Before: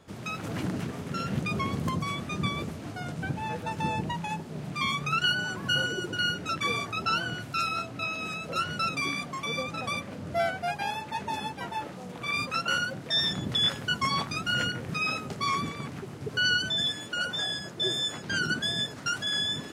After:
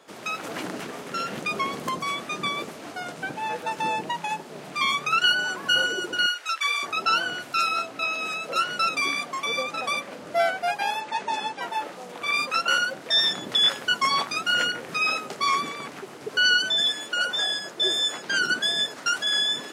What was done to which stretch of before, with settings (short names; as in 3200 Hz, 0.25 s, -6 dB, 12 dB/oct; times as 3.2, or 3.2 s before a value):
6.26–6.83 HPF 1200 Hz
11–11.62 LPF 9000 Hz 24 dB/oct
whole clip: HPF 400 Hz 12 dB/oct; gain +5.5 dB